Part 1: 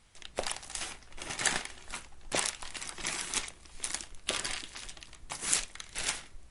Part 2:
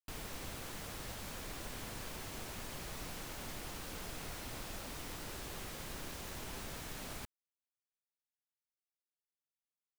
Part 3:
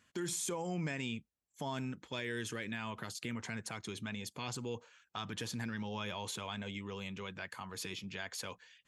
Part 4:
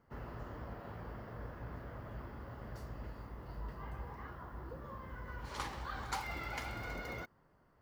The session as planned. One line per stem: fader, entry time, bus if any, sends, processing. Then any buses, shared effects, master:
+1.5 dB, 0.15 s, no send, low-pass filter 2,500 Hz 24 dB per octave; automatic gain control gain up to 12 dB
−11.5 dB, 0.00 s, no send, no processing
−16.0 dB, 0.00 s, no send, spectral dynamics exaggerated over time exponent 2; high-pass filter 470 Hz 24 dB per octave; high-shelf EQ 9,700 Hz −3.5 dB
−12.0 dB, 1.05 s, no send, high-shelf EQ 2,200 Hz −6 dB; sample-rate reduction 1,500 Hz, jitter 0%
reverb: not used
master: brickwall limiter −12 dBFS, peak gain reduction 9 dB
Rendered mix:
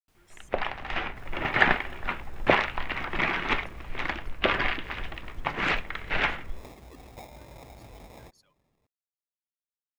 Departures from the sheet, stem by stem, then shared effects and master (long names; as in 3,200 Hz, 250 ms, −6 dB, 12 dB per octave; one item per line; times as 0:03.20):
stem 2 −11.5 dB → −23.0 dB
stem 4 −12.0 dB → −4.0 dB
master: missing brickwall limiter −12 dBFS, peak gain reduction 9 dB